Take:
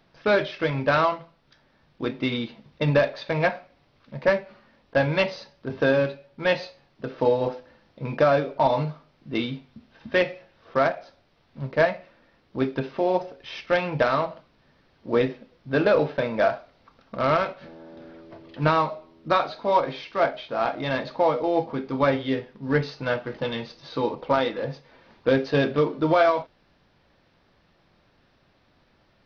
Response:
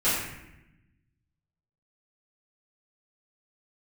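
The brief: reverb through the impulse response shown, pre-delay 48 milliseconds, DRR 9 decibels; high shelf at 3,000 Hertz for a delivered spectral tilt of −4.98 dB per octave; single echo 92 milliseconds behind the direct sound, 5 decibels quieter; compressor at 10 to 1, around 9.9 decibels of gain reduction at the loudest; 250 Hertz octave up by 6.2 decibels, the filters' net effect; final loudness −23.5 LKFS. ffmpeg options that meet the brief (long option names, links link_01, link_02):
-filter_complex "[0:a]equalizer=frequency=250:width_type=o:gain=7.5,highshelf=frequency=3000:gain=3.5,acompressor=threshold=-23dB:ratio=10,aecho=1:1:92:0.562,asplit=2[link_01][link_02];[1:a]atrim=start_sample=2205,adelay=48[link_03];[link_02][link_03]afir=irnorm=-1:irlink=0,volume=-22.5dB[link_04];[link_01][link_04]amix=inputs=2:normalize=0,volume=5.5dB"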